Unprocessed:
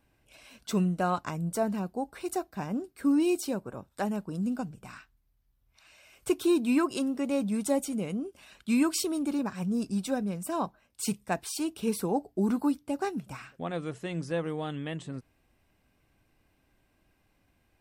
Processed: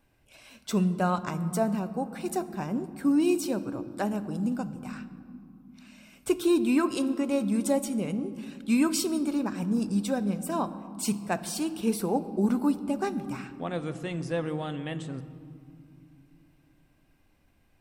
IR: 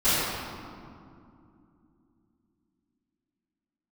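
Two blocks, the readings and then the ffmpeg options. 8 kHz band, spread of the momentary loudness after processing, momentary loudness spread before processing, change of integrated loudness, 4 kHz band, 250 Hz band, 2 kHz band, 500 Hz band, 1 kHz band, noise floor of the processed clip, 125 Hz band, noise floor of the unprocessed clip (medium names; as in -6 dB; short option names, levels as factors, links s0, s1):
+1.0 dB, 13 LU, 11 LU, +2.0 dB, +1.5 dB, +2.0 dB, +1.5 dB, +1.5 dB, +1.5 dB, -65 dBFS, +2.5 dB, -71 dBFS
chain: -filter_complex "[0:a]asplit=2[s0][s1];[1:a]atrim=start_sample=2205,lowshelf=f=170:g=10.5[s2];[s1][s2]afir=irnorm=-1:irlink=0,volume=0.0316[s3];[s0][s3]amix=inputs=2:normalize=0,volume=1.12"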